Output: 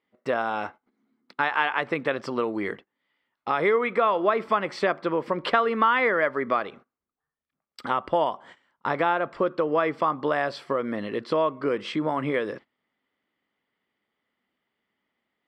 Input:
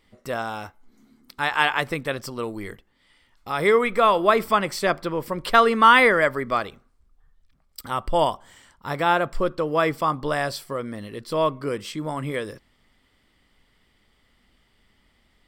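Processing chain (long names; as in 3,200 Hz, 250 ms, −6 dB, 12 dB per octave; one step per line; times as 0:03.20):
noise gate −46 dBFS, range −20 dB
band-pass filter 230–2,600 Hz
downward compressor 3 to 1, threshold −31 dBFS, peak gain reduction 16 dB
level +8 dB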